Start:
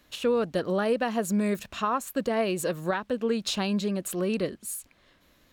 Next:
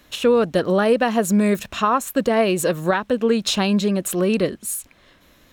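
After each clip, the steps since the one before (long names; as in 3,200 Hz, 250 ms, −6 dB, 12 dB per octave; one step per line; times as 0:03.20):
notch filter 4,600 Hz, Q 16
level +8.5 dB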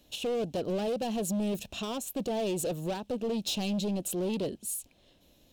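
gain into a clipping stage and back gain 20 dB
flat-topped bell 1,500 Hz −13 dB 1.3 octaves
level −8 dB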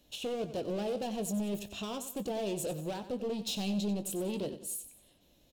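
double-tracking delay 20 ms −11 dB
repeating echo 93 ms, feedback 40%, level −12.5 dB
level −4 dB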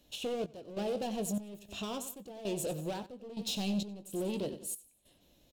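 gate pattern "xxx..xxxx.." 98 BPM −12 dB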